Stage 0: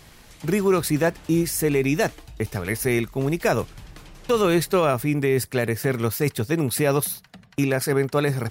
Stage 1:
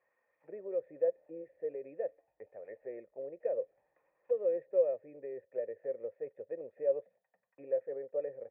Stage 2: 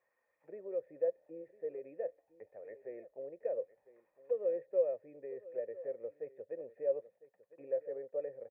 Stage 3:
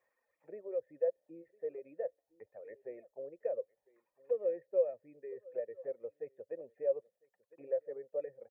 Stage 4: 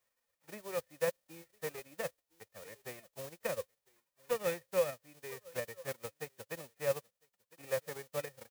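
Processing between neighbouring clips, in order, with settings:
auto-wah 540–1100 Hz, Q 3.5, down, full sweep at -20.5 dBFS; cascade formant filter e; trim -1.5 dB
delay 1004 ms -17.5 dB; trim -2.5 dB
reverb removal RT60 1.4 s; trim +1 dB
formants flattened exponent 0.3; trim -1 dB

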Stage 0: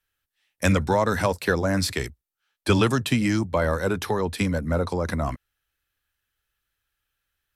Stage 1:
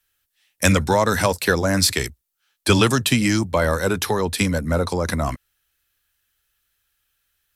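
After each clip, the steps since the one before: treble shelf 3.2 kHz +9 dB; trim +3 dB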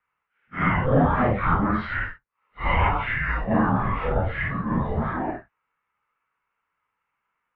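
phase randomisation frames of 200 ms; bass shelf 190 Hz -8.5 dB; mistuned SSB -370 Hz 340–2500 Hz; trim +1.5 dB

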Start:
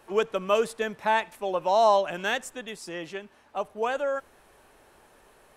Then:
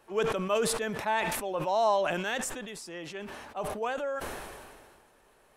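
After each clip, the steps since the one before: decay stretcher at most 31 dB/s; trim -5.5 dB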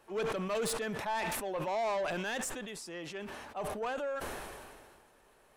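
saturation -27.5 dBFS, distortion -10 dB; trim -1.5 dB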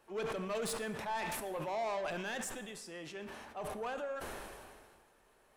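plate-style reverb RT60 1.1 s, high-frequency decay 0.75×, DRR 10.5 dB; trim -4 dB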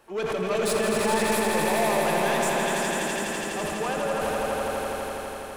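echo with a slow build-up 83 ms, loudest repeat 5, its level -5 dB; trim +9 dB

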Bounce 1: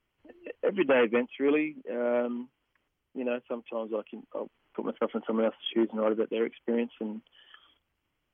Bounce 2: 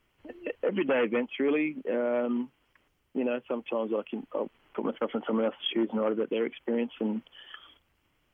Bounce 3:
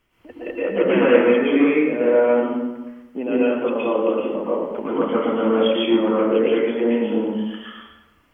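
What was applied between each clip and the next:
in parallel at +3 dB: compression, threshold -33 dBFS, peak gain reduction 11.5 dB; on the sum: peak limiter -20 dBFS, peak gain reduction 6.5 dB
plate-style reverb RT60 1.1 s, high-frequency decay 0.6×, pre-delay 105 ms, DRR -8 dB; trim +2 dB

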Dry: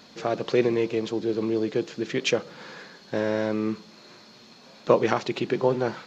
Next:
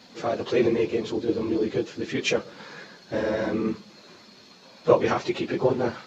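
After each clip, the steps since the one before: phase randomisation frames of 50 ms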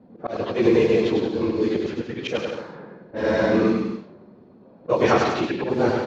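level-controlled noise filter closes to 430 Hz, open at -19.5 dBFS; slow attack 156 ms; bouncing-ball echo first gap 100 ms, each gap 0.75×, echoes 5; trim +5 dB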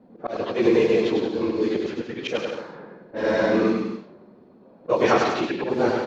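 peaking EQ 89 Hz -7.5 dB 1.8 oct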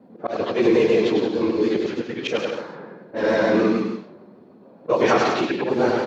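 vibrato 6.7 Hz 42 cents; in parallel at -1 dB: peak limiter -14.5 dBFS, peak gain reduction 9.5 dB; on the sum: high-pass 85 Hz; trim -2.5 dB

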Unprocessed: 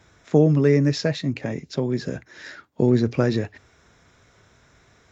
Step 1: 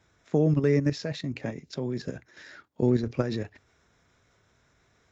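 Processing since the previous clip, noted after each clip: level held to a coarse grid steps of 9 dB; trim -3 dB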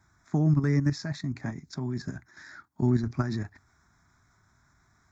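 static phaser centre 1.2 kHz, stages 4; trim +3 dB

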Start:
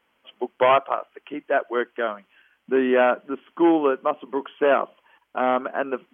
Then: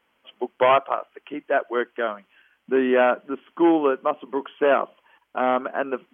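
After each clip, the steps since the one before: no audible change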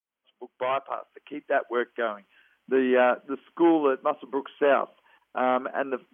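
fade-in on the opening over 1.65 s; trim -2.5 dB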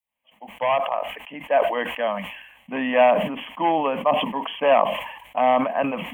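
static phaser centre 1.4 kHz, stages 6; decay stretcher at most 62 dB/s; trim +7.5 dB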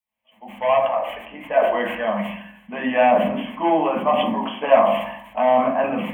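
reverberation RT60 0.70 s, pre-delay 5 ms, DRR -1.5 dB; trim -3 dB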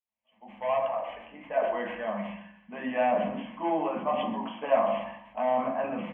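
distance through air 190 m; delay 128 ms -15 dB; trim -9 dB

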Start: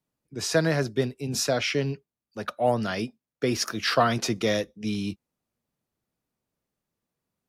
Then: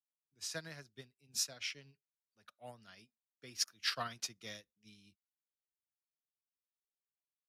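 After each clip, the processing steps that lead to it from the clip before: amplifier tone stack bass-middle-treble 5-5-5; upward expansion 2.5:1, over -46 dBFS; trim +1.5 dB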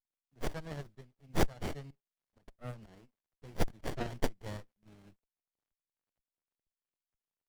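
tremolo saw up 2.1 Hz, depth 85%; sliding maximum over 33 samples; trim +12 dB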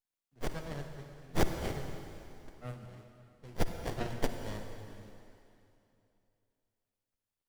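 reverberation RT60 2.8 s, pre-delay 43 ms, DRR 5.5 dB

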